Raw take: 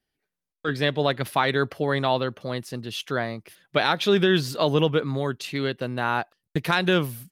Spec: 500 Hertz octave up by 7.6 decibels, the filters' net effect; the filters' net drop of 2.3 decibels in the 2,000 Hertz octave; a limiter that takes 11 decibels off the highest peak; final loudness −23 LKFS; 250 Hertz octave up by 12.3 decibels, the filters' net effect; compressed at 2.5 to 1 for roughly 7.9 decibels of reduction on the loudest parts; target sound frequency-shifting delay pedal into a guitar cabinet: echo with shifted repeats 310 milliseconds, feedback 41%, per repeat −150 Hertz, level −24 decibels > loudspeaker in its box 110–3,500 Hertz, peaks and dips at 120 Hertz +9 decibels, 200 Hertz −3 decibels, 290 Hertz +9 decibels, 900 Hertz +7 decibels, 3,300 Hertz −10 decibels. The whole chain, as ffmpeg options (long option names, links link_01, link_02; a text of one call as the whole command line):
ffmpeg -i in.wav -filter_complex "[0:a]equalizer=frequency=250:width_type=o:gain=8,equalizer=frequency=500:width_type=o:gain=5.5,equalizer=frequency=2000:width_type=o:gain=-3.5,acompressor=threshold=-22dB:ratio=2.5,alimiter=limit=-20.5dB:level=0:latency=1,asplit=4[link_01][link_02][link_03][link_04];[link_02]adelay=310,afreqshift=-150,volume=-24dB[link_05];[link_03]adelay=620,afreqshift=-300,volume=-31.7dB[link_06];[link_04]adelay=930,afreqshift=-450,volume=-39.5dB[link_07];[link_01][link_05][link_06][link_07]amix=inputs=4:normalize=0,highpass=110,equalizer=frequency=120:width_type=q:width=4:gain=9,equalizer=frequency=200:width_type=q:width=4:gain=-3,equalizer=frequency=290:width_type=q:width=4:gain=9,equalizer=frequency=900:width_type=q:width=4:gain=7,equalizer=frequency=3300:width_type=q:width=4:gain=-10,lowpass=frequency=3500:width=0.5412,lowpass=frequency=3500:width=1.3066,volume=5dB" out.wav